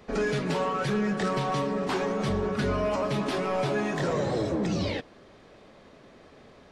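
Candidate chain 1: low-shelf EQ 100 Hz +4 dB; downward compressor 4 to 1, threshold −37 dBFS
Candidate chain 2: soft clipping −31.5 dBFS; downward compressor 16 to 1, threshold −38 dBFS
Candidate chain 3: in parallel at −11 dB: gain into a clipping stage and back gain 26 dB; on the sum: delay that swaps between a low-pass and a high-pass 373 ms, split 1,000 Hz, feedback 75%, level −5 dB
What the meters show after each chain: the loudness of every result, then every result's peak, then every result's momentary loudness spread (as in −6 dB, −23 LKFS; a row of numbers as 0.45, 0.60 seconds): −38.0, −40.0, −25.5 LKFS; −27.5, −33.0, −13.5 dBFS; 15, 14, 11 LU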